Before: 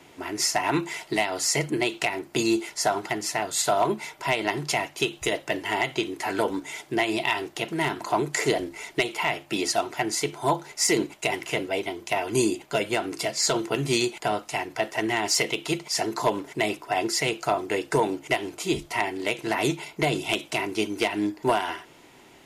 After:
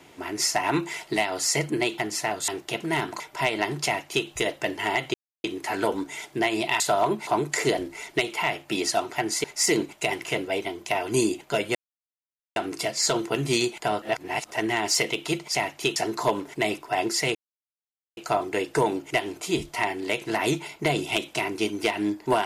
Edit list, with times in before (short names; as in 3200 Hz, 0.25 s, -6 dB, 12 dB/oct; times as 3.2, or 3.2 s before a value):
1.98–3.09 cut
3.59–4.06 swap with 7.36–8.08
4.72–5.13 copy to 15.95
6 insert silence 0.30 s
10.25–10.65 cut
12.96 insert silence 0.81 s
14.42–14.91 reverse
17.34 insert silence 0.82 s